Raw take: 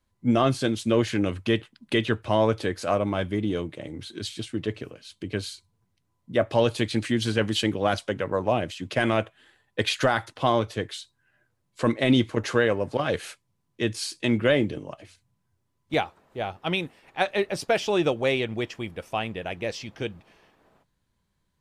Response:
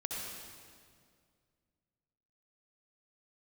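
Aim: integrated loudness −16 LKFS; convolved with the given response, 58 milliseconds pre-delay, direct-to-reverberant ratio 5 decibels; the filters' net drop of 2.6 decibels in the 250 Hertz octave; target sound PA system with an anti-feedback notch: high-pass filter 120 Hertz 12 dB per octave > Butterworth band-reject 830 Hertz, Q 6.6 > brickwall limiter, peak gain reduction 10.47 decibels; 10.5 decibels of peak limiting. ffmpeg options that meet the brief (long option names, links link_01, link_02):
-filter_complex "[0:a]equalizer=frequency=250:width_type=o:gain=-3,alimiter=limit=-19dB:level=0:latency=1,asplit=2[link_01][link_02];[1:a]atrim=start_sample=2205,adelay=58[link_03];[link_02][link_03]afir=irnorm=-1:irlink=0,volume=-7dB[link_04];[link_01][link_04]amix=inputs=2:normalize=0,highpass=120,asuperstop=centerf=830:order=8:qfactor=6.6,volume=20dB,alimiter=limit=-6.5dB:level=0:latency=1"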